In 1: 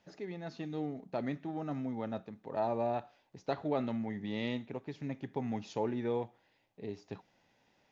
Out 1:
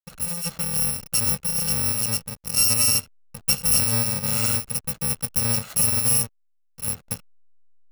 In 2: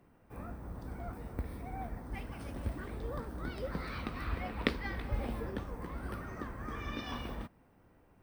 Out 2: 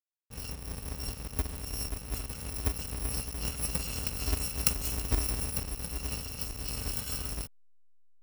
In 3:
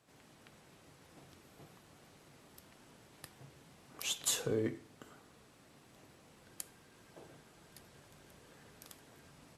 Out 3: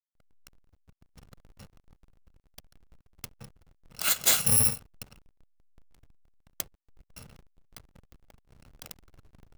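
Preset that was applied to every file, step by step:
samples in bit-reversed order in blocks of 128 samples
leveller curve on the samples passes 1
slack as between gear wheels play −43.5 dBFS
normalise the peak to −9 dBFS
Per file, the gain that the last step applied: +11.0, +2.0, +9.0 decibels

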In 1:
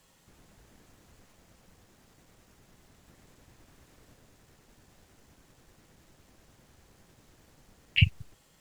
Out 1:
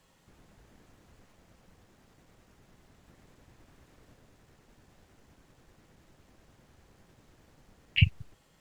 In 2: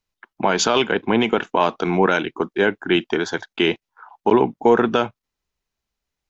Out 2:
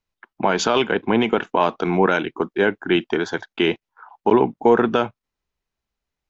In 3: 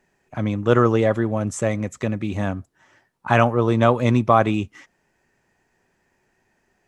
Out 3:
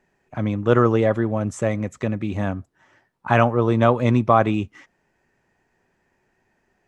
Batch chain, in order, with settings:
high-shelf EQ 4,400 Hz −7.5 dB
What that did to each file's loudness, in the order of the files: −1.0, −0.5, 0.0 LU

